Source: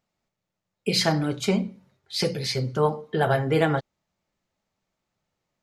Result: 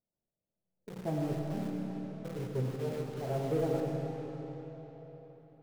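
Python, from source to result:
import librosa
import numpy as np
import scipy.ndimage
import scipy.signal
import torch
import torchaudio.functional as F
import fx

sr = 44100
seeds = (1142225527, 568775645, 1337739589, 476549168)

p1 = fx.recorder_agc(x, sr, target_db=-12.0, rise_db_per_s=9.6, max_gain_db=30)
p2 = fx.auto_swell(p1, sr, attack_ms=200.0)
p3 = fx.ladder_lowpass(p2, sr, hz=740.0, resonance_pct=25)
p4 = fx.quant_companded(p3, sr, bits=2)
p5 = p3 + (p4 * librosa.db_to_amplitude(-10.0))
p6 = fx.rev_freeverb(p5, sr, rt60_s=4.3, hf_ratio=0.8, predelay_ms=40, drr_db=0.0)
y = p6 * librosa.db_to_amplitude(-8.0)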